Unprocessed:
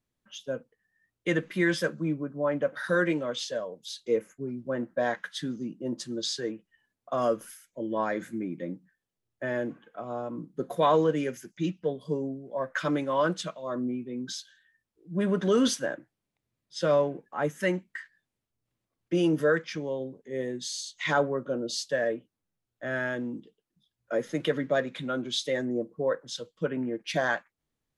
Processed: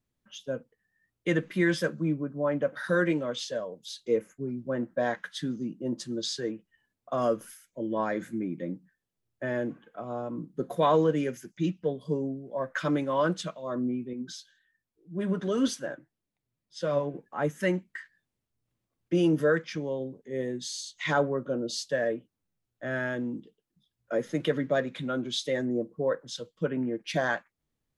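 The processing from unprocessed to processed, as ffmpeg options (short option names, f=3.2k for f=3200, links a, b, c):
-filter_complex "[0:a]asettb=1/sr,asplit=3[a][b][c];[a]atrim=end=14.134[d];[b]atrim=start=14.13:end=17.14,asetpts=PTS-STARTPTS,afade=t=in:d=0.004:c=qsin,afade=t=out:st=3.006:d=0.004:c=qsin,flanger=delay=2.2:depth=6:regen=53:speed=1.9:shape=triangular[e];[c]atrim=start=17.136[f];[d][e]acrossfade=d=0.004:c1=hsin:c2=qsin[g];[g][f]acrossfade=d=0.004:c1=qsin:c2=hsin,lowshelf=f=320:g=4.5,volume=-1.5dB"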